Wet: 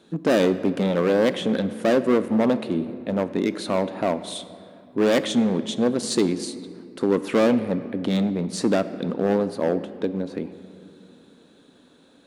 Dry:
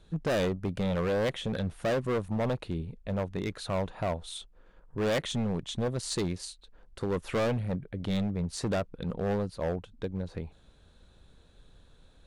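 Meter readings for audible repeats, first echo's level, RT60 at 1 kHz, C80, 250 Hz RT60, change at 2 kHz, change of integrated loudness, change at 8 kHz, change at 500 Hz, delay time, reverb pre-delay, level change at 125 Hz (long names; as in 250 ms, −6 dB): no echo audible, no echo audible, 2.1 s, 14.0 dB, 2.9 s, +7.0 dB, +9.0 dB, +6.5 dB, +9.5 dB, no echo audible, 3 ms, +1.5 dB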